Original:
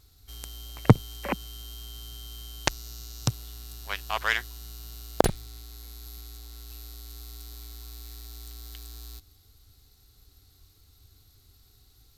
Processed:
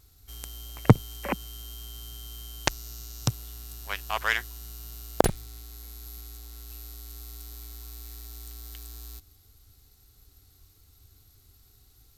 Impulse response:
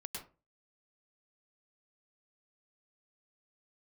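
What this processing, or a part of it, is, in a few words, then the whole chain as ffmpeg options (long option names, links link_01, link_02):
exciter from parts: -filter_complex "[0:a]asplit=2[link_01][link_02];[link_02]highpass=frequency=3800:width=0.5412,highpass=frequency=3800:width=1.3066,asoftclip=type=tanh:threshold=-28dB,volume=-6.5dB[link_03];[link_01][link_03]amix=inputs=2:normalize=0"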